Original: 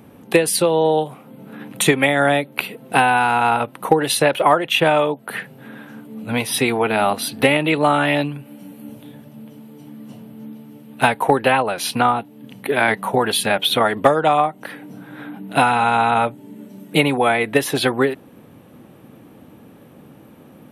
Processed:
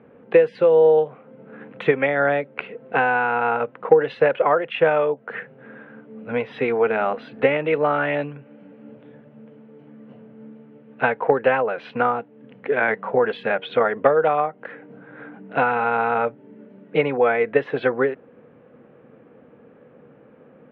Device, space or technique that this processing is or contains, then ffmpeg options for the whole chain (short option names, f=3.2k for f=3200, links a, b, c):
bass cabinet: -af "highpass=85,equalizer=f=100:t=q:w=4:g=-10,equalizer=f=180:t=q:w=4:g=-4,equalizer=f=310:t=q:w=4:g=-5,equalizer=f=480:t=q:w=4:g=10,equalizer=f=880:t=q:w=4:g=-3,equalizer=f=1.5k:t=q:w=4:g=4,lowpass=f=2.4k:w=0.5412,lowpass=f=2.4k:w=1.3066,volume=-5dB"